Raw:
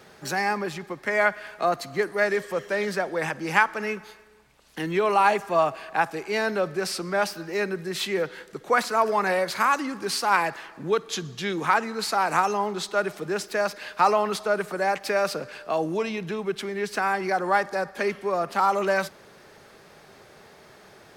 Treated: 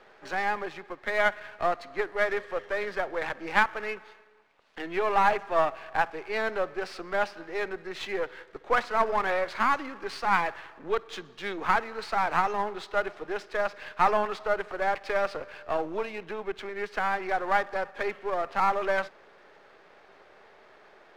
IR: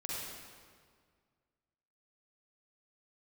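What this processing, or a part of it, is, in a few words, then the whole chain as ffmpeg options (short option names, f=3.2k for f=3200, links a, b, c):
crystal radio: -af "highpass=390,lowpass=2.7k,aeval=exprs='if(lt(val(0),0),0.447*val(0),val(0))':c=same"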